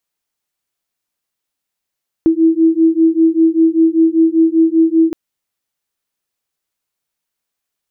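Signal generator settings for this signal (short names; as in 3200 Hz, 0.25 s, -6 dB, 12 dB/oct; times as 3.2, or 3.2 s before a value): beating tones 323 Hz, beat 5.1 Hz, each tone -11.5 dBFS 2.87 s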